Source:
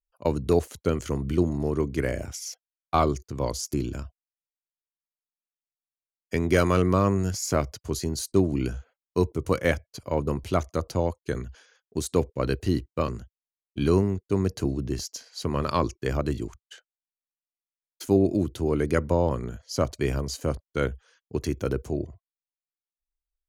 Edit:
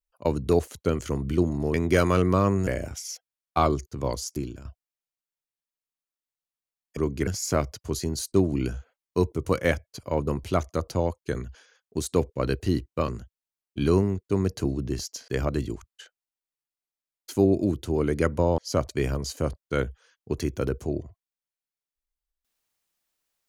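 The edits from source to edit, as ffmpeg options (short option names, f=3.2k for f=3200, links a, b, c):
-filter_complex "[0:a]asplit=8[a][b][c][d][e][f][g][h];[a]atrim=end=1.742[i];[b]atrim=start=6.338:end=7.272[j];[c]atrim=start=2.038:end=4.02,asetpts=PTS-STARTPTS,afade=t=out:st=1.292:d=0.69:c=qsin:silence=0.237137[k];[d]atrim=start=4.02:end=6.342,asetpts=PTS-STARTPTS,afade=t=in:d=0.004:c=hsin:silence=0.237137[l];[e]atrim=start=1.738:end=2.042[m];[f]atrim=start=7.268:end=15.282[n];[g]atrim=start=15.998:end=19.302[o];[h]atrim=start=19.618[p];[i][j]acrossfade=d=0.004:c1=hsin:c2=hsin[q];[k][l]concat=n=2:v=0:a=1[r];[q][r]acrossfade=d=0.004:c1=hsin:c2=hsin[s];[s][m]acrossfade=d=0.004:c1=hsin:c2=hsin[t];[t][n]acrossfade=d=0.004:c1=hsin:c2=hsin[u];[u][o]acrossfade=d=0.004:c1=hsin:c2=hsin[v];[v][p]acrossfade=d=0.004:c1=hsin:c2=hsin"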